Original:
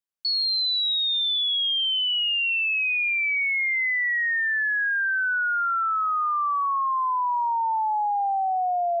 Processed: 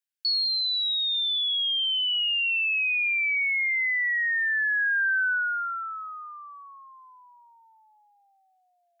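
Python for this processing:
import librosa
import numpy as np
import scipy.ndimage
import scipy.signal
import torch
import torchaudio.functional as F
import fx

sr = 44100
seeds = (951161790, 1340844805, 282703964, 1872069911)

y = fx.rider(x, sr, range_db=10, speed_s=0.5)
y = scipy.signal.sosfilt(scipy.signal.cheby1(5, 1.0, 1500.0, 'highpass', fs=sr, output='sos'), y)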